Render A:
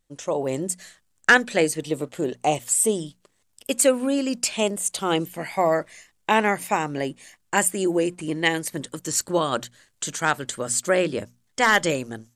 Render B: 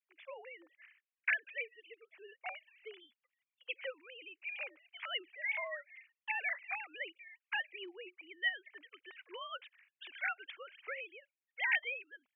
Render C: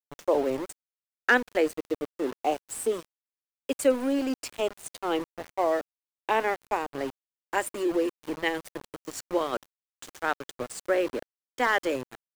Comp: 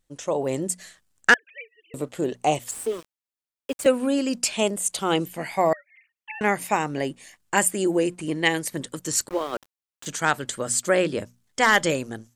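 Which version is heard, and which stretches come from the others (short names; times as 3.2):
A
1.34–1.94 from B
2.71–3.86 from C
5.73–6.41 from B
9.29–10.06 from C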